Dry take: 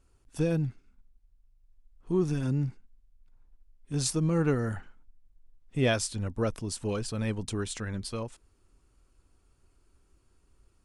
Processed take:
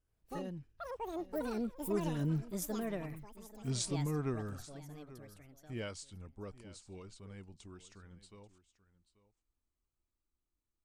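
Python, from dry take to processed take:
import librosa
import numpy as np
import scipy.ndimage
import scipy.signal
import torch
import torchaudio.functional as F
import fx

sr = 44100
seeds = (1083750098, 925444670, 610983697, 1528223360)

y = fx.doppler_pass(x, sr, speed_mps=38, closest_m=16.0, pass_at_s=2.89)
y = fx.echo_pitch(y, sr, ms=81, semitones=7, count=3, db_per_echo=-3.0)
y = y + 10.0 ** (-17.0 / 20.0) * np.pad(y, (int(836 * sr / 1000.0), 0))[:len(y)]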